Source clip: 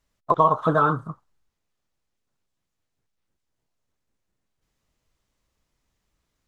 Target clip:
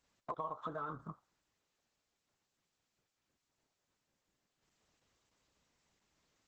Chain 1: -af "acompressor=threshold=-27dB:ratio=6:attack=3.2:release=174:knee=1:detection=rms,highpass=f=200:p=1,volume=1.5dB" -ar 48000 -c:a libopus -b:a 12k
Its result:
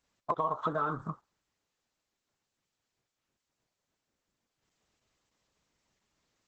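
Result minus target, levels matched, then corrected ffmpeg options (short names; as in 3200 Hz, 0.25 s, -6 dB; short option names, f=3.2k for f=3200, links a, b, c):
compressor: peak gain reduction -10 dB
-af "acompressor=threshold=-39dB:ratio=6:attack=3.2:release=174:knee=1:detection=rms,highpass=f=200:p=1,volume=1.5dB" -ar 48000 -c:a libopus -b:a 12k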